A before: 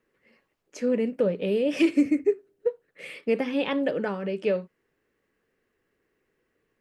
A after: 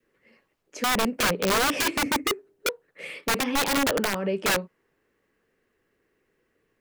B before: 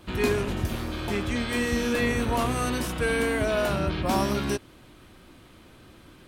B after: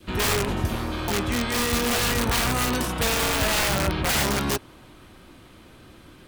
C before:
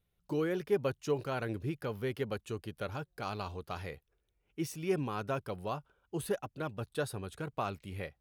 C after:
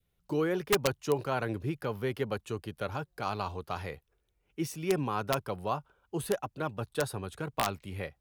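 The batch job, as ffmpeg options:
ffmpeg -i in.wav -filter_complex "[0:a]adynamicequalizer=threshold=0.00631:dfrequency=940:dqfactor=1.5:tfrequency=940:tqfactor=1.5:attack=5:release=100:ratio=0.375:range=2.5:mode=boostabove:tftype=bell,acrossover=split=170[link_01][link_02];[link_02]aeval=exprs='(mod(10.6*val(0)+1,2)-1)/10.6':channel_layout=same[link_03];[link_01][link_03]amix=inputs=2:normalize=0,volume=2.5dB" out.wav

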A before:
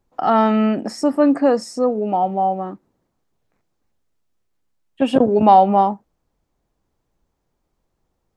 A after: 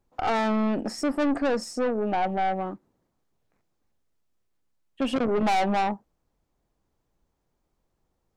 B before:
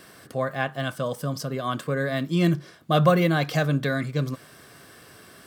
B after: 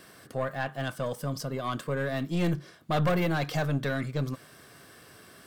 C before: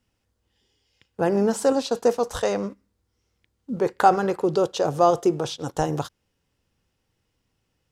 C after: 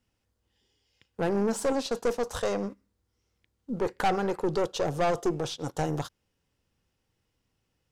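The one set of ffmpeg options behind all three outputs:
ffmpeg -i in.wav -af "aeval=exprs='(tanh(8.91*val(0)+0.4)-tanh(0.4))/8.91':channel_layout=same,volume=-2dB" out.wav

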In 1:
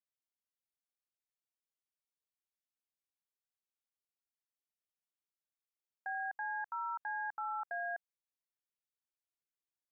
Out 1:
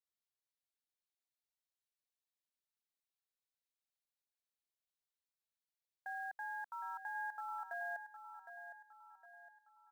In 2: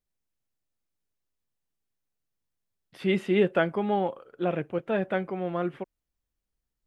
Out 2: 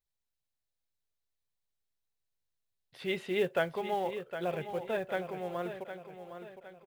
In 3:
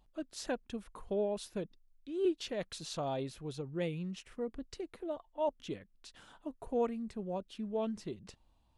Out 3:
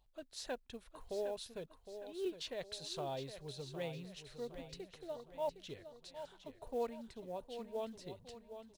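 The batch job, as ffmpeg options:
ffmpeg -i in.wav -af "equalizer=frequency=200:width_type=o:width=0.33:gain=-12,equalizer=frequency=315:width_type=o:width=0.33:gain=-10,equalizer=frequency=1250:width_type=o:width=0.33:gain=-4,equalizer=frequency=4000:width_type=o:width=0.33:gain=6,acrusher=bits=7:mode=log:mix=0:aa=0.000001,aecho=1:1:761|1522|2283|3044|3805:0.316|0.136|0.0585|0.0251|0.0108,volume=-4.5dB" out.wav

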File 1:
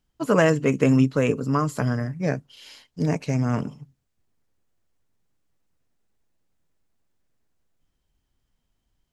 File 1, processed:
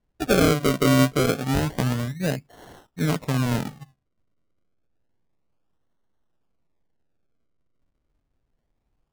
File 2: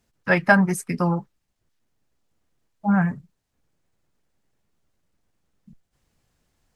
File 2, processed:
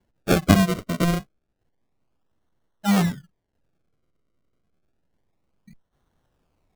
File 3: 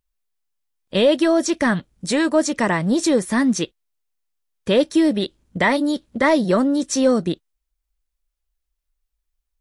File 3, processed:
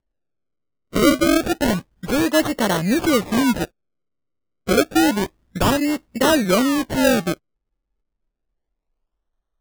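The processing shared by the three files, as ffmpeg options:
ffmpeg -i in.wav -af "acrusher=samples=35:mix=1:aa=0.000001:lfo=1:lforange=35:lforate=0.29" out.wav

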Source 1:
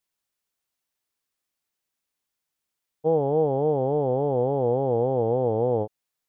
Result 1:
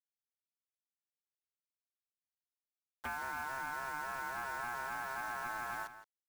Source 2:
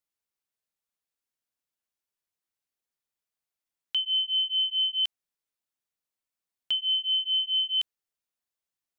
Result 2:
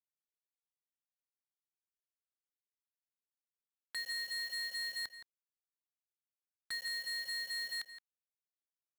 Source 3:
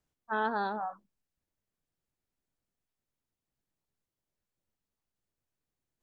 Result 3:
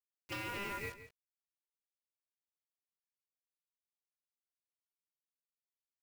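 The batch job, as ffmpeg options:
ffmpeg -i in.wav -filter_complex "[0:a]aemphasis=mode=reproduction:type=50fm,bandreject=frequency=580:width=12,agate=range=-10dB:threshold=-34dB:ratio=16:detection=peak,superequalizer=6b=2:7b=0.355:8b=0.562:9b=0.398:13b=0.501,acompressor=threshold=-39dB:ratio=16,aeval=exprs='0.0282*sin(PI/2*2.24*val(0)/0.0282)':channel_layout=same,aeval=exprs='val(0)*sin(2*PI*1200*n/s)':channel_layout=same,acrusher=bits=7:mix=0:aa=0.000001,asplit=2[link_01][link_02];[link_02]adelay=169.1,volume=-12dB,highshelf=frequency=4000:gain=-3.8[link_03];[link_01][link_03]amix=inputs=2:normalize=0,volume=-2dB" out.wav

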